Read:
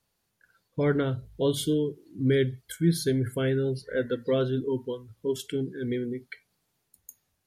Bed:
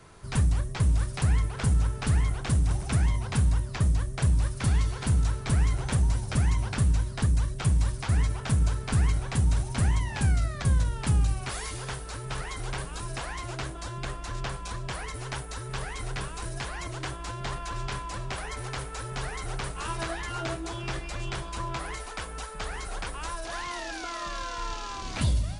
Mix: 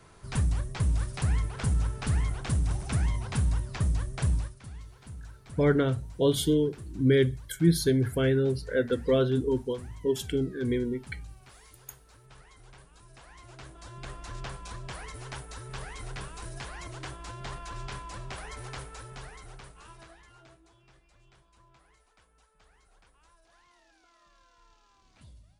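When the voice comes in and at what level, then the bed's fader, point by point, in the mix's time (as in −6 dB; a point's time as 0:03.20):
4.80 s, +1.5 dB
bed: 0:04.35 −3 dB
0:04.62 −19.5 dB
0:13.05 −19.5 dB
0:14.19 −5.5 dB
0:18.78 −5.5 dB
0:20.85 −28 dB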